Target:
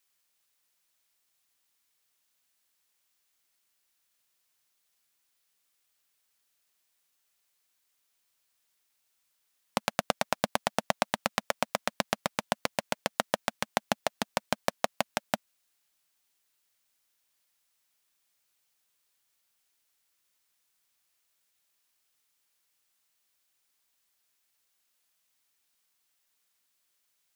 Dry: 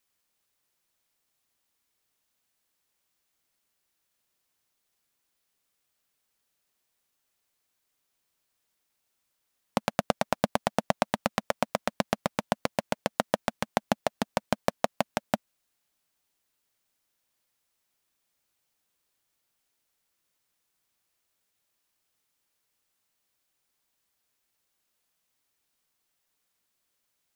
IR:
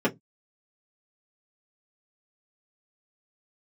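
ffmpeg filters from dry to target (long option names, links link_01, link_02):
-af "tiltshelf=frequency=900:gain=-4.5,volume=-1.5dB"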